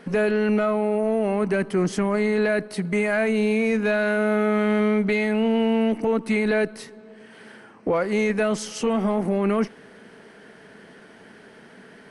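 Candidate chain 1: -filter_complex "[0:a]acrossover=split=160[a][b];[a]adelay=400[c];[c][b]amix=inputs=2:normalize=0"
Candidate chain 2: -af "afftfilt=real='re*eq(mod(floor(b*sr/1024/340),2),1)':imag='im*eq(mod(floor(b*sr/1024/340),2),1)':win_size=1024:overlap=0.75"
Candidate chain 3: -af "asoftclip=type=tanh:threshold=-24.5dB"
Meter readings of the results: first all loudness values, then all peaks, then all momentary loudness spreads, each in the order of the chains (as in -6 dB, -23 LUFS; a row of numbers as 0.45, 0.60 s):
-23.5, -25.5, -28.5 LUFS; -11.0, -14.0, -24.5 dBFS; 6, 5, 20 LU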